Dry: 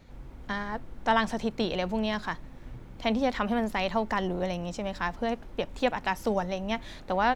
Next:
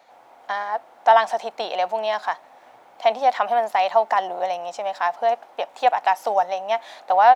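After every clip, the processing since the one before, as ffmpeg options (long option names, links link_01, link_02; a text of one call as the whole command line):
ffmpeg -i in.wav -af "highpass=frequency=730:width_type=q:width=4.5,volume=2.5dB" out.wav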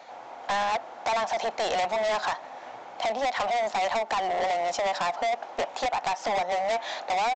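ffmpeg -i in.wav -af "acompressor=threshold=-22dB:ratio=10,aresample=16000,volume=31.5dB,asoftclip=hard,volume=-31.5dB,aresample=44100,volume=7.5dB" out.wav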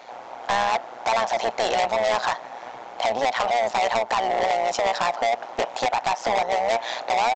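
ffmpeg -i in.wav -af "tremolo=f=120:d=0.71,volume=7.5dB" out.wav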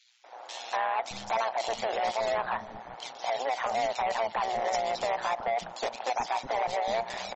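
ffmpeg -i in.wav -filter_complex "[0:a]acrossover=split=320|2800[link_01][link_02][link_03];[link_02]adelay=240[link_04];[link_01]adelay=610[link_05];[link_05][link_04][link_03]amix=inputs=3:normalize=0,volume=-6dB" -ar 48000 -c:a libmp3lame -b:a 32k out.mp3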